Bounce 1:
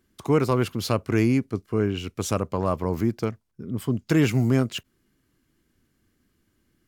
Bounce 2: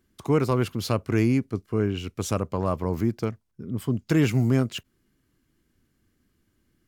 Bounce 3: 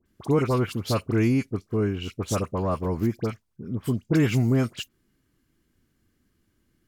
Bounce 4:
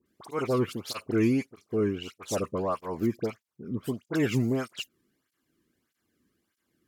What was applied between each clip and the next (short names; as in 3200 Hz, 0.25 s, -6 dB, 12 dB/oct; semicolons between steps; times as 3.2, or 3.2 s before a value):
low shelf 180 Hz +3 dB; gain -2 dB
dispersion highs, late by 59 ms, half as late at 1700 Hz
tape flanging out of phase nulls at 1.6 Hz, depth 1.5 ms